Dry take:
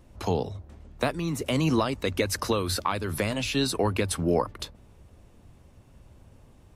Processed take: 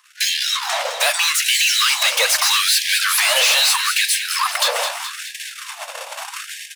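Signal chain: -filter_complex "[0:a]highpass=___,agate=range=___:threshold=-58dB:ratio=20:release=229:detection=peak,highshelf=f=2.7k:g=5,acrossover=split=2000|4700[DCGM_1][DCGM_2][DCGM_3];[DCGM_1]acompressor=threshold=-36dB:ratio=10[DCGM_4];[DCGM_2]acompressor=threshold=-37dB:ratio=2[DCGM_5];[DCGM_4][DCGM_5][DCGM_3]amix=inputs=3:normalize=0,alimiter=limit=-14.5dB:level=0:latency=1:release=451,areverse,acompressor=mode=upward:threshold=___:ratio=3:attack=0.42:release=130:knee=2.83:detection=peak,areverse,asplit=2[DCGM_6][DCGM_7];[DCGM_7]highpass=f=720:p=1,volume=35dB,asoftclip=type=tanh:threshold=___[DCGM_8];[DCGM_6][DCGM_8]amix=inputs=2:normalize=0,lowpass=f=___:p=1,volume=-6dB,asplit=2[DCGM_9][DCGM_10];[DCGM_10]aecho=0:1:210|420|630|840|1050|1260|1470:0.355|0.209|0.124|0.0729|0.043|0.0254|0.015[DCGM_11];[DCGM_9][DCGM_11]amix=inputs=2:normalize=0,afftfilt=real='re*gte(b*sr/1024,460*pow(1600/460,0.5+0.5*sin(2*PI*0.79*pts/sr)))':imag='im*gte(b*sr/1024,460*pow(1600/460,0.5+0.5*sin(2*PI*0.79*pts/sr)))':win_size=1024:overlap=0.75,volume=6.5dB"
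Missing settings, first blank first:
280, -52dB, -37dB, -14.5dB, 6.6k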